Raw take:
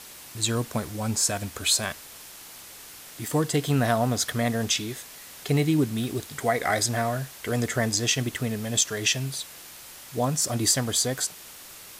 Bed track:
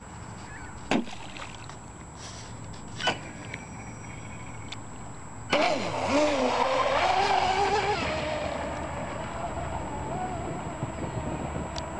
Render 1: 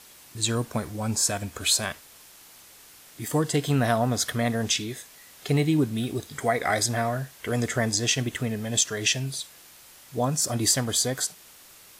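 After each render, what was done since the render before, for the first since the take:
noise reduction from a noise print 6 dB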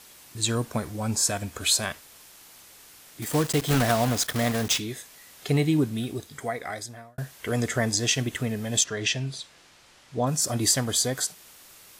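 0:03.22–0:04.81: one scale factor per block 3 bits
0:05.76–0:07.18: fade out
0:08.84–0:10.27: high-frequency loss of the air 82 metres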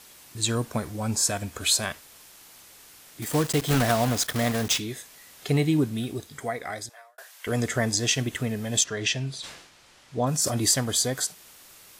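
0:06.89–0:07.47: Bessel high-pass filter 850 Hz, order 8
0:09.31–0:10.74: level that may fall only so fast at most 67 dB per second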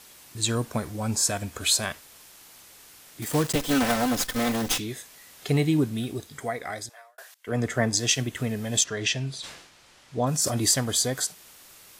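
0:03.55–0:04.78: lower of the sound and its delayed copy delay 3.9 ms
0:07.34–0:08.37: multiband upward and downward expander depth 70%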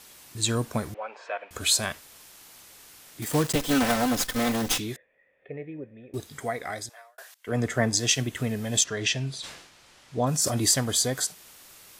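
0:00.94–0:01.51: elliptic band-pass filter 500–2,700 Hz, stop band 80 dB
0:04.96–0:06.14: formant resonators in series e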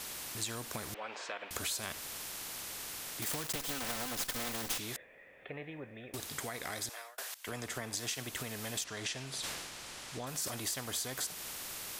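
downward compressor, threshold −32 dBFS, peak gain reduction 14 dB
every bin compressed towards the loudest bin 2 to 1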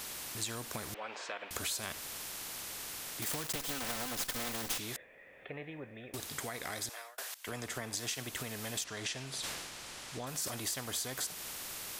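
upward compression, threshold −52 dBFS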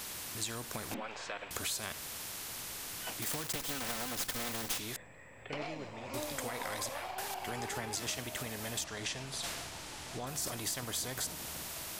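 mix in bed track −18 dB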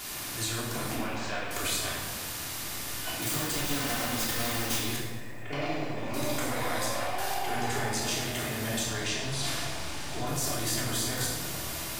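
rectangular room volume 710 cubic metres, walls mixed, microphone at 3.2 metres
feedback echo at a low word length 108 ms, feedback 55%, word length 8 bits, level −12 dB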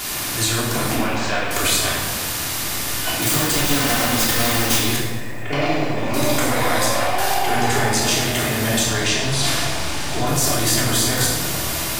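level +12 dB

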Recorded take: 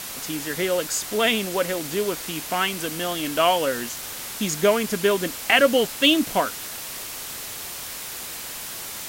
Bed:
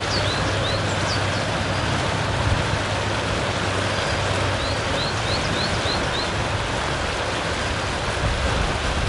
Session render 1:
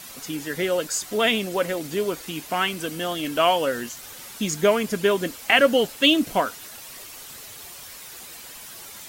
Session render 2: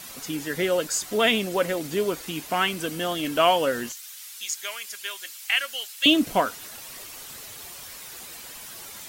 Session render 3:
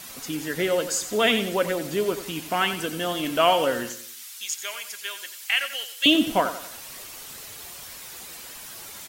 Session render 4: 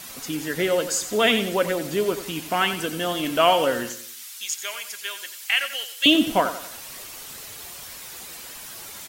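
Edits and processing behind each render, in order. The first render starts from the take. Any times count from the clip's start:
broadband denoise 9 dB, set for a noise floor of −35 dBFS
0:03.92–0:06.06: Bessel high-pass filter 2,800 Hz
repeating echo 90 ms, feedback 40%, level −11.5 dB
level +1.5 dB

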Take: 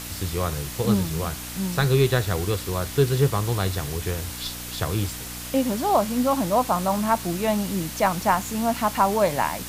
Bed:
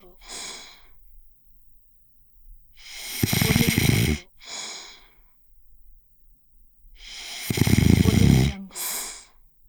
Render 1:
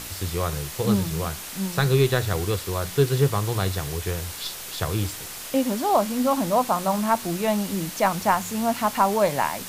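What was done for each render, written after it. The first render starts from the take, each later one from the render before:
hum removal 60 Hz, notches 5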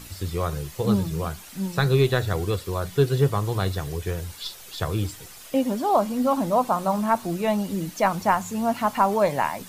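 broadband denoise 10 dB, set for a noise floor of −36 dBFS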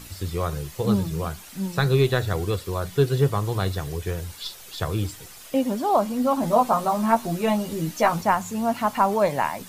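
0:06.41–0:08.21: double-tracking delay 13 ms −2 dB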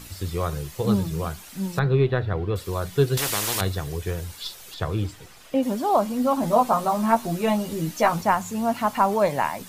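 0:01.79–0:02.56: high-frequency loss of the air 380 metres
0:03.17–0:03.61: every bin compressed towards the loudest bin 4 to 1
0:04.74–0:05.63: high-shelf EQ 5,500 Hz −11.5 dB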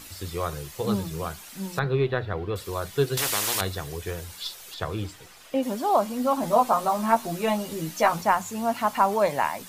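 low-shelf EQ 300 Hz −7 dB
mains-hum notches 60/120/180 Hz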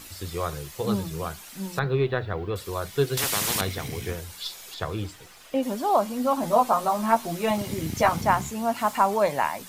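mix in bed −16.5 dB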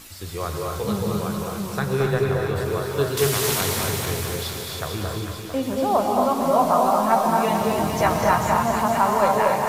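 delay that swaps between a low-pass and a high-pass 224 ms, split 1,300 Hz, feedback 74%, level −3.5 dB
reverb whose tail is shaped and stops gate 310 ms rising, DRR 1.5 dB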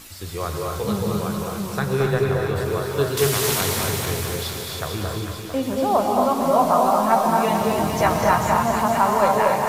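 level +1 dB

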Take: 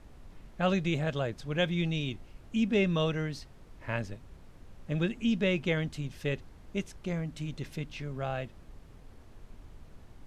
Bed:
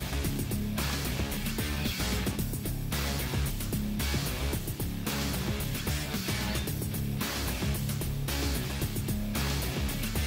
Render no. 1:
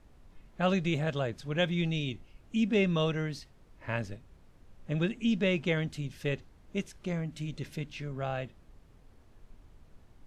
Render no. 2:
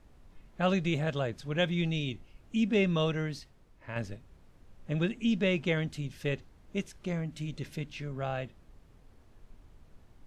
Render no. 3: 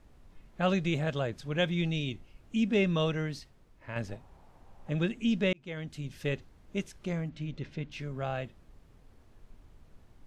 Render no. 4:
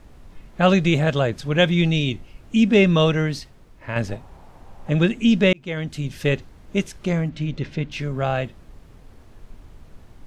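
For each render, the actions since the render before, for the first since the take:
noise reduction from a noise print 6 dB
0:03.33–0:03.96: fade out, to −7 dB
0:04.08–0:04.90: parametric band 830 Hz +13 dB 0.91 octaves; 0:05.53–0:06.16: fade in linear; 0:07.29–0:07.92: high-frequency loss of the air 150 metres
level +11.5 dB

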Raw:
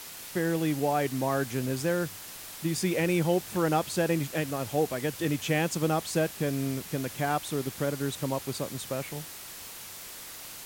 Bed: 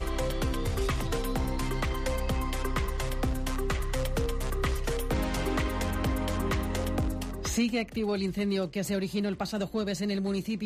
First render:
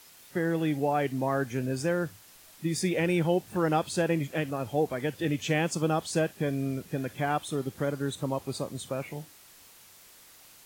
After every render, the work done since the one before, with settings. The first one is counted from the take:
noise reduction from a noise print 11 dB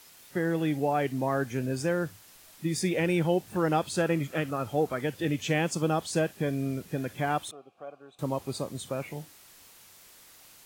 0:03.96–0:05.01: parametric band 1,300 Hz +10.5 dB 0.22 octaves
0:07.51–0:08.19: formant filter a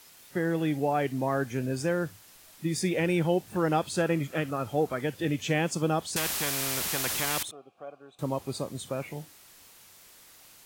0:06.16–0:07.43: every bin compressed towards the loudest bin 4 to 1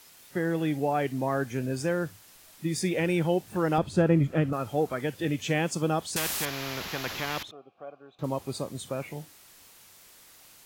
0:03.78–0:04.53: spectral tilt −3 dB per octave
0:06.45–0:08.24: moving average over 5 samples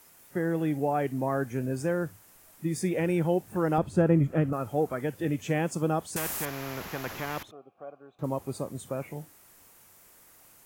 parametric band 3,900 Hz −10.5 dB 1.5 octaves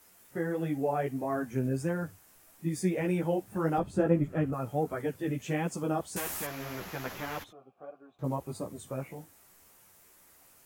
multi-voice chorus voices 2, 1.5 Hz, delay 13 ms, depth 3 ms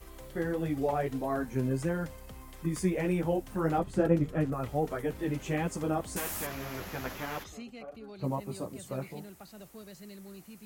mix in bed −18 dB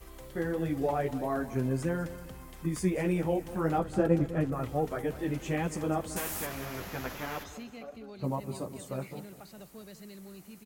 repeating echo 201 ms, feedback 43%, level −15 dB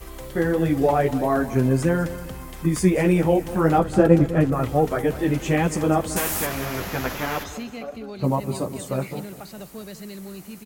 level +10.5 dB

